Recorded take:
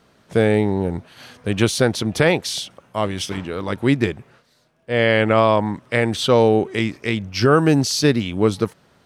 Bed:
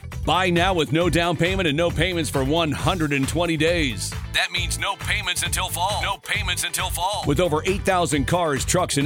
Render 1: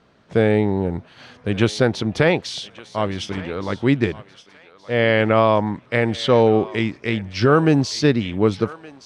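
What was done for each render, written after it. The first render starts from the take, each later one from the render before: air absorption 100 m; thinning echo 1.169 s, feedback 32%, high-pass 890 Hz, level -16 dB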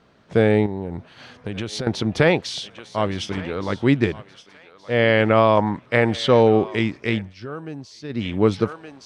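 0.66–1.87 compressor, threshold -24 dBFS; 5.57–6.19 dynamic EQ 970 Hz, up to +4 dB, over -34 dBFS, Q 0.82; 7.18–8.26 dip -18 dB, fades 0.17 s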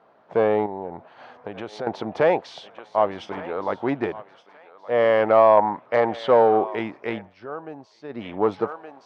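sine folder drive 3 dB, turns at -3 dBFS; band-pass 780 Hz, Q 1.9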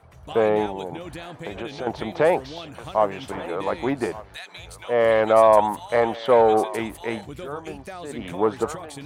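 add bed -17.5 dB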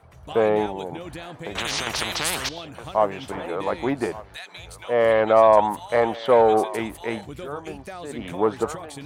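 1.55–2.49 spectral compressor 10:1; 5.12–5.69 LPF 4000 Hz -> 7300 Hz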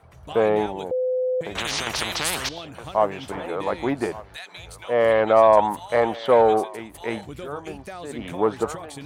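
0.91–1.41 bleep 509 Hz -20 dBFS; 6.51–6.94 fade out quadratic, to -10 dB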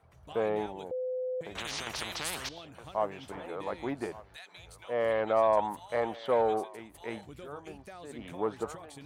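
gain -10.5 dB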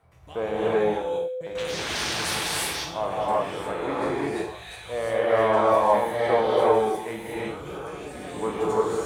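spectral trails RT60 0.49 s; non-linear reverb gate 0.38 s rising, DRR -7 dB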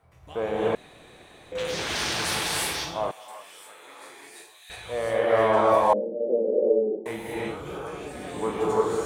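0.75–1.52 room tone; 3.11–4.7 differentiator; 5.93–7.06 Chebyshev band-pass 190–570 Hz, order 4

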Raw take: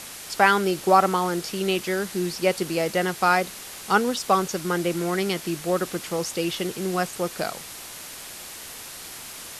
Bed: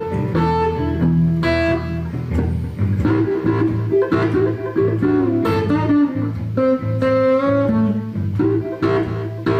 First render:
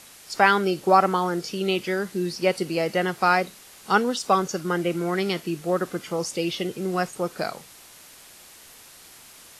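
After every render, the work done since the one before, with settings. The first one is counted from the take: noise print and reduce 9 dB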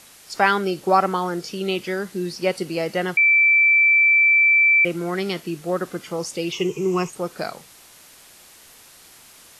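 3.17–4.85 bleep 2330 Hz -12 dBFS; 6.52–7.1 ripple EQ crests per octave 0.74, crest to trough 16 dB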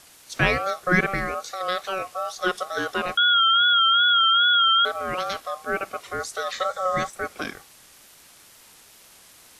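ring modulator 940 Hz; wow and flutter 64 cents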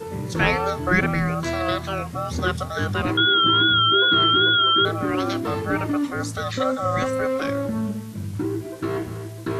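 add bed -9 dB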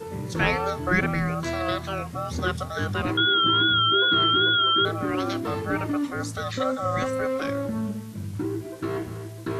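gain -3 dB

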